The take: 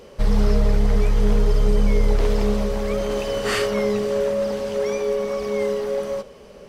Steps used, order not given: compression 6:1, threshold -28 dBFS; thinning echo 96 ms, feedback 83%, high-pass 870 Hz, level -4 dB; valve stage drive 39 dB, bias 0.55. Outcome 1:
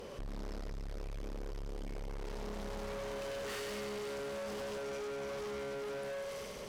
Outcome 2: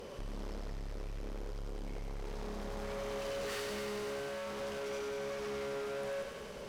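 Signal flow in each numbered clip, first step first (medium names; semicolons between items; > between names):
thinning echo > compression > valve stage; compression > valve stage > thinning echo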